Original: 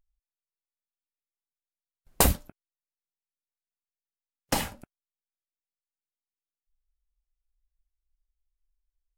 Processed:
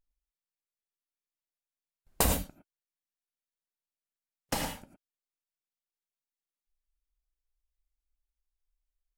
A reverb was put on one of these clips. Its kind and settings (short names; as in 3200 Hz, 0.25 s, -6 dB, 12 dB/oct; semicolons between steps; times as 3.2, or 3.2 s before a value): non-linear reverb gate 0.13 s rising, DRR 4 dB; gain -5.5 dB